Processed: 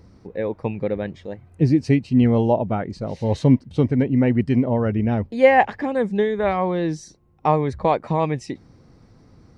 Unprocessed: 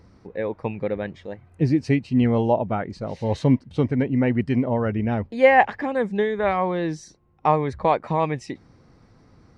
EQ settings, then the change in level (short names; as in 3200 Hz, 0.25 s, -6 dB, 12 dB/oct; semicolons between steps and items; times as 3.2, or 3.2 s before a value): bell 1500 Hz -5 dB 2.5 oct; +3.5 dB